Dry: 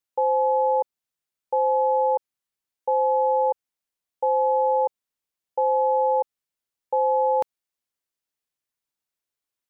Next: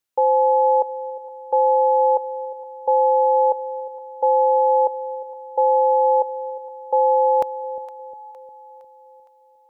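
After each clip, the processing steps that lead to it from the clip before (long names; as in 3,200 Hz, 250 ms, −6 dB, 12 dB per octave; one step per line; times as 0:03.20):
echo with a time of its own for lows and highs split 660 Hz, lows 355 ms, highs 462 ms, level −15 dB
level +4.5 dB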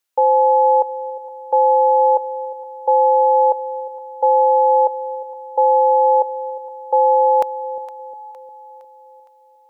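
low-shelf EQ 300 Hz −11.5 dB
level +5 dB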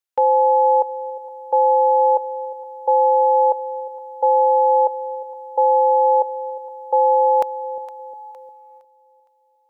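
noise gate −39 dBFS, range −9 dB
level −1.5 dB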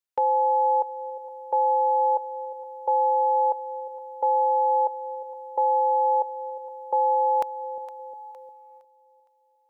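dynamic equaliser 520 Hz, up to −5 dB, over −29 dBFS, Q 1.6
level −4 dB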